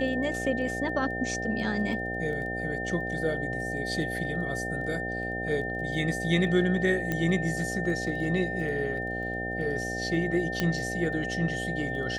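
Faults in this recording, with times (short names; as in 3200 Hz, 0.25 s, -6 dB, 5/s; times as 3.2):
buzz 60 Hz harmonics 13 -35 dBFS
crackle 11/s -38 dBFS
tone 1800 Hz -33 dBFS
7.12 pop -15 dBFS
10.6 pop -12 dBFS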